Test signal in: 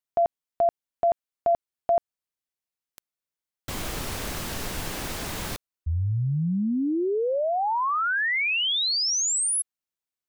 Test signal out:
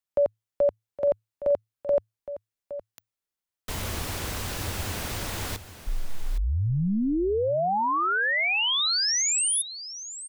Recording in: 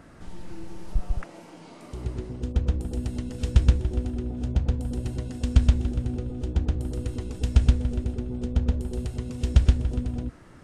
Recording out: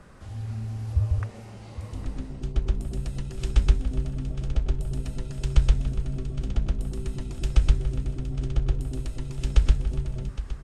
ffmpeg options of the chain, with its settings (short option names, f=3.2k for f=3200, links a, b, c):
-af "afreqshift=-110,aecho=1:1:815:0.211"